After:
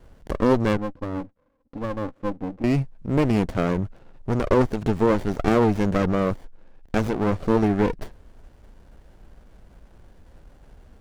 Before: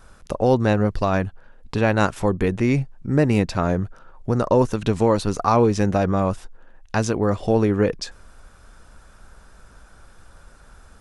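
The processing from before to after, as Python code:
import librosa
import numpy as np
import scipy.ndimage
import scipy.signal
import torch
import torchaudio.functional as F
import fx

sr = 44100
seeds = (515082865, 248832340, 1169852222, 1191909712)

y = fx.double_bandpass(x, sr, hz=390.0, octaves=0.85, at=(0.77, 2.64))
y = fx.running_max(y, sr, window=33)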